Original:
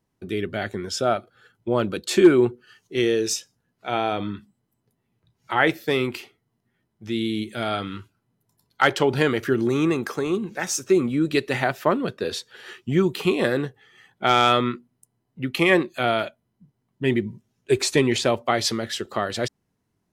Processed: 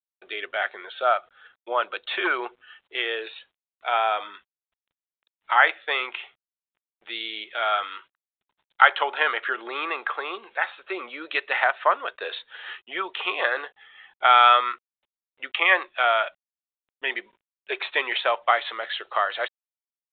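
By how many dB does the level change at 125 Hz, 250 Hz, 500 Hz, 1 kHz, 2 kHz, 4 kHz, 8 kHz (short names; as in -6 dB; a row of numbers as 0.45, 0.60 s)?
under -40 dB, -21.0 dB, -8.0 dB, +4.0 dB, +4.0 dB, -0.5 dB, under -40 dB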